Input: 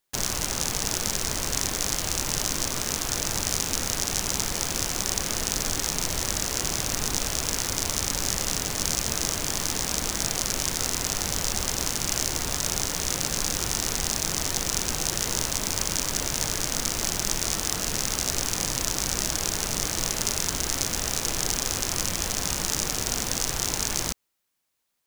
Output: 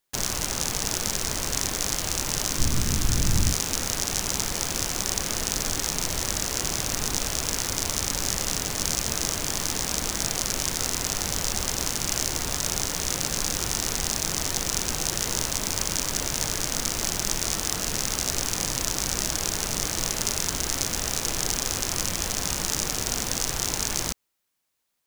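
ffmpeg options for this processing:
-filter_complex "[0:a]asplit=3[s0][s1][s2];[s0]afade=t=out:st=2.58:d=0.02[s3];[s1]asubboost=boost=6:cutoff=240,afade=t=in:st=2.58:d=0.02,afade=t=out:st=3.52:d=0.02[s4];[s2]afade=t=in:st=3.52:d=0.02[s5];[s3][s4][s5]amix=inputs=3:normalize=0"

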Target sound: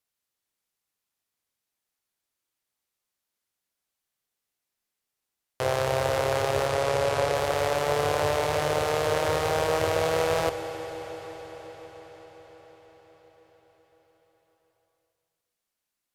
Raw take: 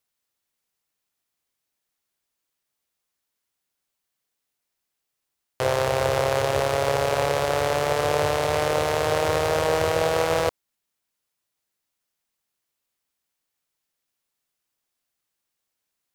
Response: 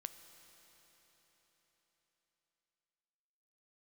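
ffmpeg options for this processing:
-filter_complex "[0:a]asettb=1/sr,asplit=3[s0][s1][s2];[s0]atrim=end=6.674[s3];[s1]atrim=start=6.67:end=7.35,asetpts=PTS-STARTPTS,afade=t=in:d=0.004:c=qsin,afade=t=out:st=0.676:d=0.004:c=qsin,equalizer=f=15000:t=o:w=0.26:g=-13[s4];[s2]atrim=start=7.346[s5];[s3][s4]acrossfade=d=0.004:c1=hsin:c2=qsin[s6];[s6][s5]acrossfade=d=0.004:c1=qsin:c2=hsin[s7];[1:a]atrim=start_sample=2205,asetrate=29106,aresample=44100[s8];[s7][s8]afir=irnorm=-1:irlink=0,volume=0.891"

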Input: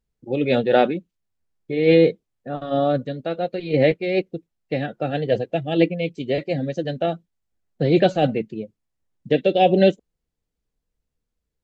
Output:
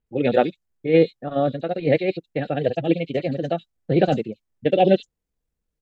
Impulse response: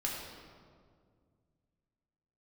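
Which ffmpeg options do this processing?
-filter_complex "[0:a]acrossover=split=4000[s0][s1];[s1]adelay=140[s2];[s0][s2]amix=inputs=2:normalize=0,atempo=2"

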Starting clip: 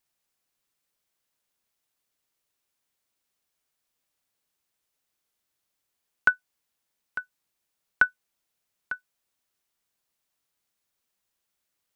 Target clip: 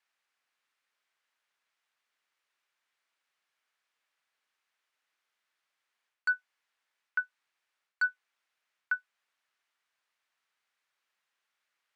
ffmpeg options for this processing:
-af "aeval=exprs='0.447*(cos(1*acos(clip(val(0)/0.447,-1,1)))-cos(1*PI/2))+0.158*(cos(5*acos(clip(val(0)/0.447,-1,1)))-cos(5*PI/2))':c=same,areverse,acompressor=threshold=0.0631:ratio=6,areverse,bandpass=f=1700:t=q:w=1.1:csg=0,volume=0.794"

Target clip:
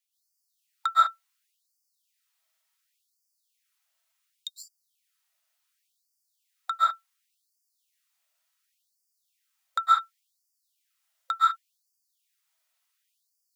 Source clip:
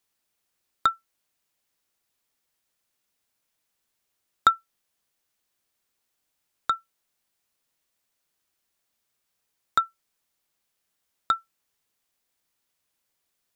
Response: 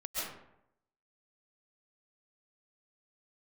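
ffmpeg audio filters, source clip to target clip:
-filter_complex "[0:a]lowshelf=f=390:g=-10[s0];[1:a]atrim=start_sample=2205,afade=t=out:st=0.26:d=0.01,atrim=end_sample=11907[s1];[s0][s1]afir=irnorm=-1:irlink=0,afftfilt=real='re*gte(b*sr/1024,530*pow(4600/530,0.5+0.5*sin(2*PI*0.69*pts/sr)))':imag='im*gte(b*sr/1024,530*pow(4600/530,0.5+0.5*sin(2*PI*0.69*pts/sr)))':win_size=1024:overlap=0.75"

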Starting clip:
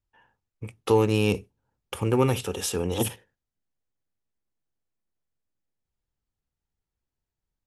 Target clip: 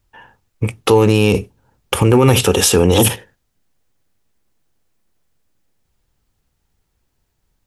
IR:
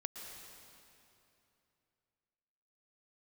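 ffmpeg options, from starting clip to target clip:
-af "alimiter=level_in=9.44:limit=0.891:release=50:level=0:latency=1,volume=0.891"

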